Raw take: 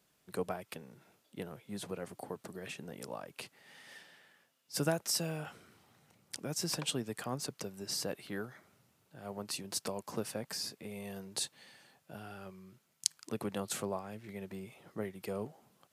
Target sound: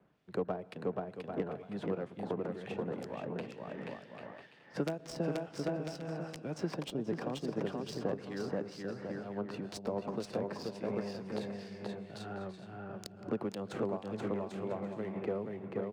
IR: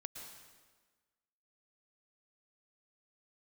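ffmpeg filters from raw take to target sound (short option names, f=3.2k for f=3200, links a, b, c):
-filter_complex "[0:a]aeval=exprs='(mod(10*val(0)+1,2)-1)/10':c=same,lowshelf=f=74:g=-11,aecho=1:1:480|792|994.8|1127|1212:0.631|0.398|0.251|0.158|0.1,asplit=2[a][b];[1:a]atrim=start_sample=2205[c];[b][c]afir=irnorm=-1:irlink=0,volume=-8dB[d];[a][d]amix=inputs=2:normalize=0,acrossover=split=2400[e][f];[e]aeval=exprs='val(0)*(1-0.7/2+0.7/2*cos(2*PI*2.1*n/s))':c=same[g];[f]aeval=exprs='val(0)*(1-0.7/2-0.7/2*cos(2*PI*2.1*n/s))':c=same[h];[g][h]amix=inputs=2:normalize=0,adynamicsmooth=sensitivity=5.5:basefreq=1.8k,lowshelf=f=270:g=5.5,acrossover=split=210|740[i][j][k];[i]acompressor=threshold=-53dB:ratio=4[l];[j]acompressor=threshold=-39dB:ratio=4[m];[k]acompressor=threshold=-53dB:ratio=4[n];[l][m][n]amix=inputs=3:normalize=0,volume=6.5dB"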